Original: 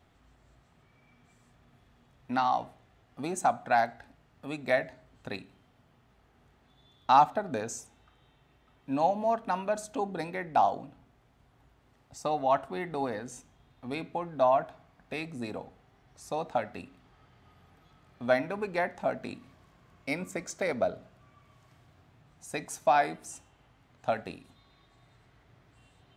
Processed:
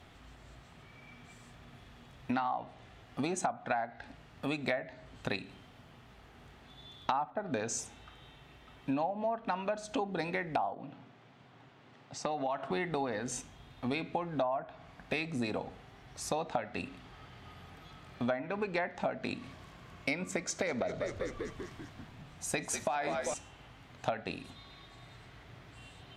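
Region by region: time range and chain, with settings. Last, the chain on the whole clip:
10.73–12.71 HPF 120 Hz 24 dB/oct + air absorption 93 m + compressor 2.5:1, threshold -38 dBFS
20.4–23.34 frequency-shifting echo 0.195 s, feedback 63%, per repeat -68 Hz, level -12.5 dB + compressor, threshold -27 dBFS
whole clip: treble ducked by the level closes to 1700 Hz, closed at -22 dBFS; bell 3100 Hz +4.5 dB 1.7 oct; compressor 8:1, threshold -38 dBFS; gain +7.5 dB

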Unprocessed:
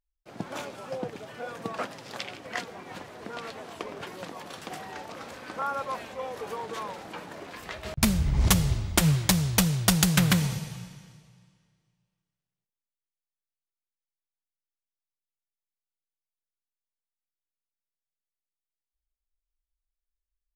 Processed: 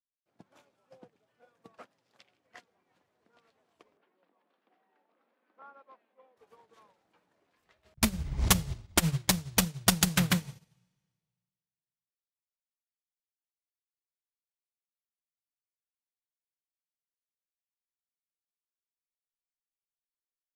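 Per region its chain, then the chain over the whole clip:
3.97–6.37 steep high-pass 200 Hz + air absorption 310 m
whole clip: notches 50/100/150/200 Hz; upward expander 2.5:1, over -39 dBFS

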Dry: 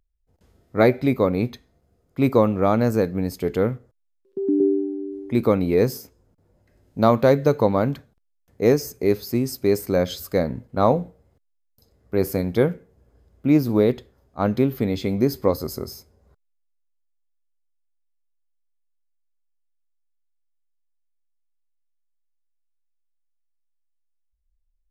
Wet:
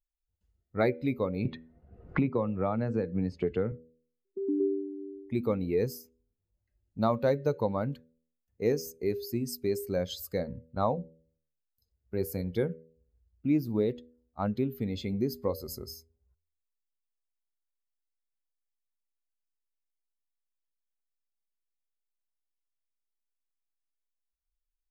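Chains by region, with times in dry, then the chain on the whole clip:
1.45–3.72 LPF 3500 Hz + three-band squash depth 100%
whole clip: per-bin expansion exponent 1.5; compressor 1.5:1, threshold -37 dBFS; de-hum 81 Hz, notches 7

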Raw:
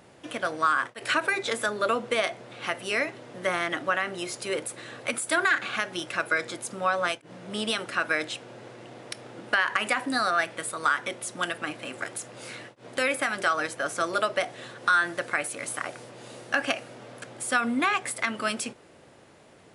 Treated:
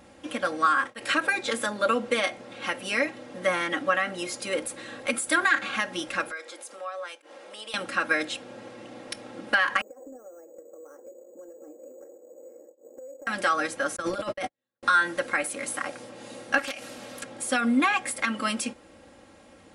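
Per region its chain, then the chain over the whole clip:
6.31–7.74 HPF 400 Hz 24 dB/oct + compressor 2:1, threshold -44 dBFS
9.81–13.27 Butterworth band-pass 450 Hz, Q 2.4 + compressor 16:1, threshold -43 dBFS + careless resampling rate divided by 6×, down filtered, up hold
13.96–14.83 gate -33 dBFS, range -55 dB + low shelf 130 Hz +11 dB + negative-ratio compressor -32 dBFS
16.58–17.23 high shelf 2700 Hz +12 dB + compressor 3:1, threshold -34 dBFS + Doppler distortion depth 0.37 ms
whole clip: low shelf 120 Hz +8 dB; comb 3.7 ms, depth 76%; gain -1 dB

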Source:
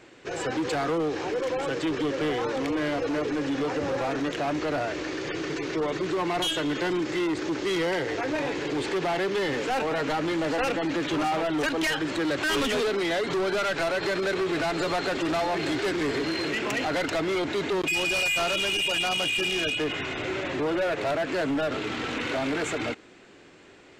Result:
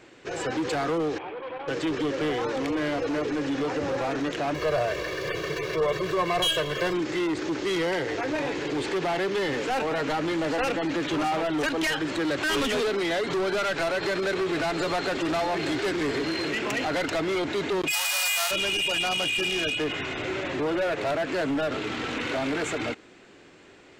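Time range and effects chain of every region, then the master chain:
1.18–1.68 rippled Chebyshev low-pass 3400 Hz, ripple 9 dB + core saturation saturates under 850 Hz
4.54–6.94 median filter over 5 samples + comb 1.8 ms, depth 91%
17.9–18.5 spectral whitening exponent 0.3 + steep high-pass 630 Hz
whole clip: dry

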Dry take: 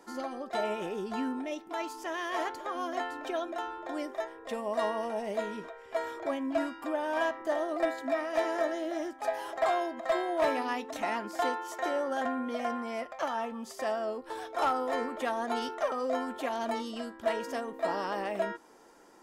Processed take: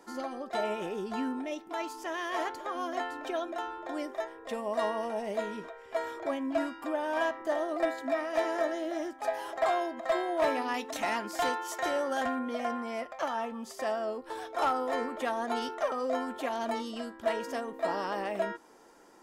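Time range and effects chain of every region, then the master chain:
10.74–12.39 high shelf 2100 Hz +6.5 dB + hard clip -23.5 dBFS
whole clip: dry

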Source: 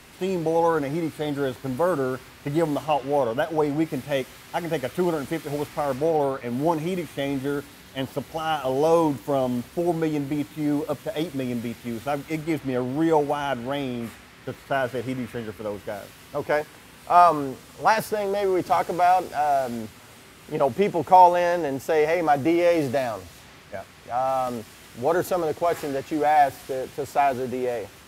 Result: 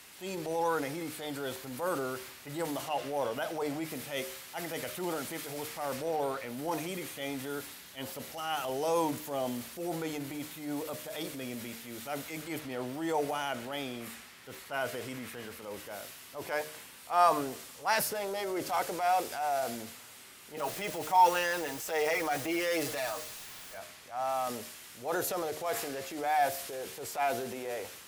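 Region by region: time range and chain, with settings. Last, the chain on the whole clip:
20.57–23.76 low shelf 440 Hz -7 dB + comb 6.4 ms, depth 78% + added noise pink -45 dBFS
whole clip: tilt +2.5 dB/oct; de-hum 76.48 Hz, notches 9; transient shaper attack -7 dB, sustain +4 dB; gain -7 dB

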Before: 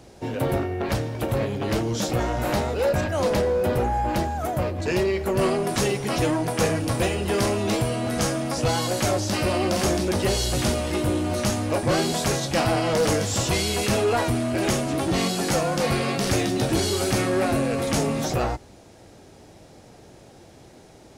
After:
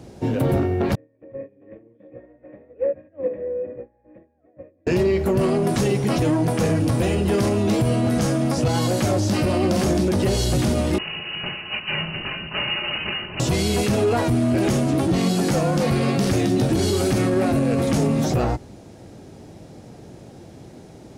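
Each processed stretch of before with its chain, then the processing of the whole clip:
0.95–4.87 vocal tract filter e + small resonant body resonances 290/1100 Hz, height 13 dB, ringing for 70 ms + upward expander 2.5:1, over -40 dBFS
10.98–13.4 minimum comb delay 4.5 ms + brick-wall FIR high-pass 510 Hz + inverted band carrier 3500 Hz
whole clip: bell 170 Hz +9.5 dB 2.8 oct; limiter -12.5 dBFS

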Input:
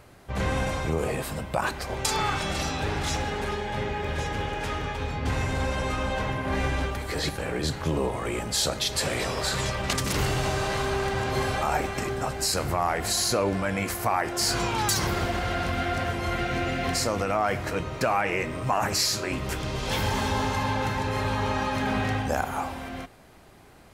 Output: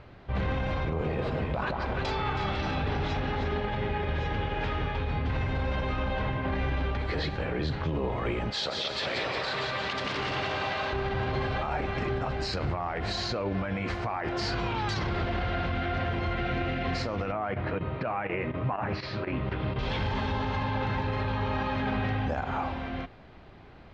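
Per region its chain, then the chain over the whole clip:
0.72–3.69 high shelf 9400 Hz -7 dB + echo with dull and thin repeats by turns 0.161 s, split 1300 Hz, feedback 59%, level -2.5 dB
8.5–10.93 HPF 570 Hz 6 dB/oct + split-band echo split 500 Hz, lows 0.115 s, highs 0.177 s, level -4 dB
17.32–19.79 chopper 4.1 Hz, depth 65%, duty 90% + HPF 75 Hz + air absorption 280 m
whole clip: LPF 4000 Hz 24 dB/oct; low shelf 170 Hz +5 dB; limiter -21.5 dBFS

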